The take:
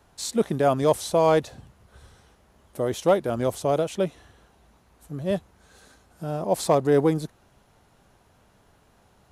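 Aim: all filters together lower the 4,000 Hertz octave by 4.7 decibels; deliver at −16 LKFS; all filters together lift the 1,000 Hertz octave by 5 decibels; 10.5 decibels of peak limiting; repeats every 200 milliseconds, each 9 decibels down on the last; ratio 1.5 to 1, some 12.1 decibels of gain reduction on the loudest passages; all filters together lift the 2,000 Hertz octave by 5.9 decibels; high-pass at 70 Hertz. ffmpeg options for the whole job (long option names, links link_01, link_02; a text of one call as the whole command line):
ffmpeg -i in.wav -af "highpass=70,equalizer=frequency=1000:width_type=o:gain=5.5,equalizer=frequency=2000:width_type=o:gain=7.5,equalizer=frequency=4000:width_type=o:gain=-8.5,acompressor=threshold=-47dB:ratio=1.5,alimiter=level_in=2.5dB:limit=-24dB:level=0:latency=1,volume=-2.5dB,aecho=1:1:200|400|600|800:0.355|0.124|0.0435|0.0152,volume=22.5dB" out.wav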